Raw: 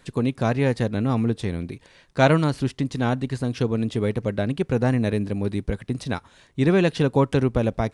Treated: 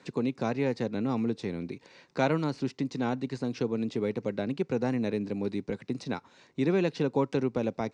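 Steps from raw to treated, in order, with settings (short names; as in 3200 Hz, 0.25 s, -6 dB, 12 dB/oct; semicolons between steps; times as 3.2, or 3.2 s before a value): speaker cabinet 200–6500 Hz, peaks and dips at 640 Hz -5 dB, 1200 Hz -4 dB, 1700 Hz -6 dB, 3200 Hz -8 dB; three-band squash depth 40%; gain -4.5 dB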